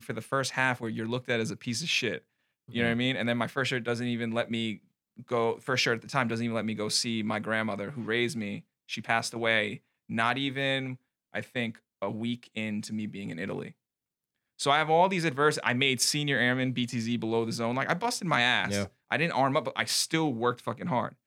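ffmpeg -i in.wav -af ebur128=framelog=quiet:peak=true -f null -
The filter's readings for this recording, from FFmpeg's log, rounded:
Integrated loudness:
  I:         -28.9 LUFS
  Threshold: -39.2 LUFS
Loudness range:
  LRA:         5.8 LU
  Threshold: -49.3 LUFS
  LRA low:   -32.4 LUFS
  LRA high:  -26.6 LUFS
True peak:
  Peak:       -9.8 dBFS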